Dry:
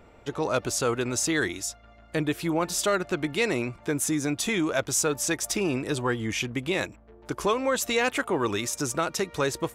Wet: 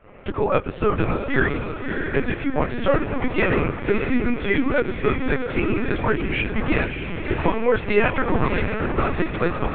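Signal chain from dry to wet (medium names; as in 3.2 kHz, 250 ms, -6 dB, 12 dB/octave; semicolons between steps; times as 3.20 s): in parallel at 0 dB: compression 6:1, threshold -33 dBFS, peak gain reduction 13 dB; on the sum: mistuned SSB -57 Hz 170–3000 Hz; volume shaper 96 bpm, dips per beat 1, -17 dB, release 101 ms; echo that smears into a reverb 613 ms, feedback 48%, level -5 dB; on a send at -20 dB: reverberation RT60 0.50 s, pre-delay 4 ms; on the sum: flange 0.24 Hz, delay 9 ms, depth 5.6 ms, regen -15%; LPC vocoder at 8 kHz pitch kept; trim +7 dB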